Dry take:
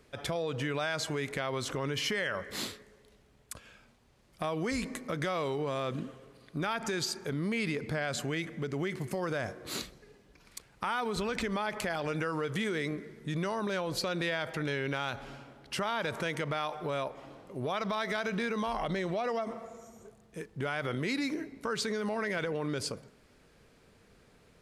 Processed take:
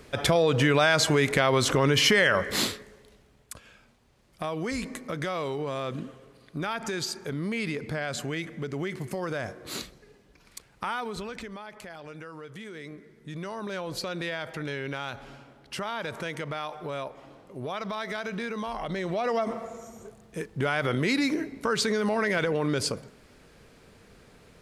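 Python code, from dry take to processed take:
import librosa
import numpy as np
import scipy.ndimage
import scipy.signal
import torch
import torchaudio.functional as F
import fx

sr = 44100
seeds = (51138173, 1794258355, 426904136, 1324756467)

y = fx.gain(x, sr, db=fx.line((2.47, 11.5), (3.52, 1.5), (10.89, 1.5), (11.66, -9.5), (12.64, -9.5), (13.84, -0.5), (18.82, -0.5), (19.44, 7.0)))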